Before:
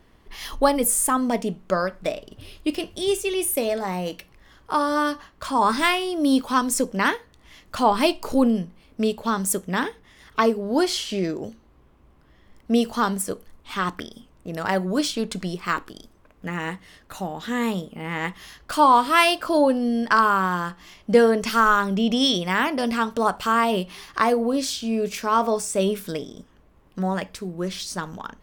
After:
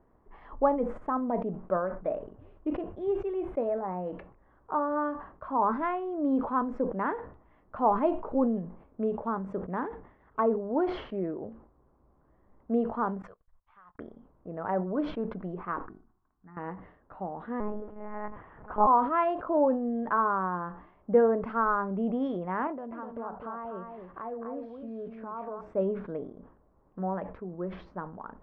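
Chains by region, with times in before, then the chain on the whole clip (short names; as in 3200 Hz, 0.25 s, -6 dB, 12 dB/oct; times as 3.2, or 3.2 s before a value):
13.22–13.99 passive tone stack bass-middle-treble 10-0-10 + compressor 5:1, threshold -42 dBFS + gate -50 dBFS, range -54 dB
15.86–16.57 fixed phaser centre 1300 Hz, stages 4 + resonator 370 Hz, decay 0.58 s, mix 70%
17.6–18.87 zero-crossing step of -34.5 dBFS + LPF 2300 Hz + monotone LPC vocoder at 8 kHz 210 Hz
22.67–25.61 compressor 3:1, threshold -31 dBFS + echo 0.251 s -5.5 dB
whole clip: Bessel low-pass 750 Hz, order 4; low shelf 490 Hz -12 dB; sustainer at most 97 dB/s; gain +1.5 dB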